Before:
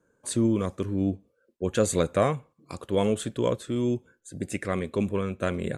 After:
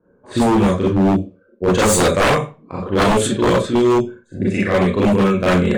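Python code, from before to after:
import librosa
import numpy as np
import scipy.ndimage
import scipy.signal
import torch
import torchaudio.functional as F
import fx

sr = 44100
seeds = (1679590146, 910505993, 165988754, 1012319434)

p1 = fx.rev_schroeder(x, sr, rt60_s=0.31, comb_ms=30, drr_db=-6.5)
p2 = fx.env_lowpass(p1, sr, base_hz=1000.0, full_db=-13.5)
p3 = p2 + fx.room_early_taps(p2, sr, ms=(11, 39), db=(-15.0, -17.0), dry=0)
p4 = 10.0 ** (-15.0 / 20.0) * (np.abs((p3 / 10.0 ** (-15.0 / 20.0) + 3.0) % 4.0 - 2.0) - 1.0)
y = F.gain(torch.from_numpy(p4), 6.5).numpy()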